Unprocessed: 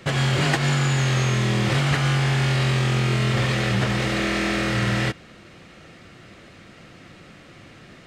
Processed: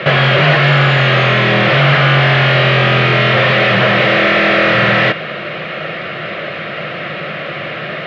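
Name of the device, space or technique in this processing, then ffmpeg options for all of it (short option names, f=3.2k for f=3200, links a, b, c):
overdrive pedal into a guitar cabinet: -filter_complex "[0:a]asplit=2[a][b];[b]highpass=f=720:p=1,volume=32dB,asoftclip=type=tanh:threshold=-5.5dB[c];[a][c]amix=inputs=2:normalize=0,lowpass=f=3.9k:p=1,volume=-6dB,highpass=100,equalizer=f=150:t=q:w=4:g=9,equalizer=f=270:t=q:w=4:g=-9,equalizer=f=600:t=q:w=4:g=8,equalizer=f=880:t=q:w=4:g=-7,lowpass=f=3.4k:w=0.5412,lowpass=f=3.4k:w=1.3066,volume=2dB"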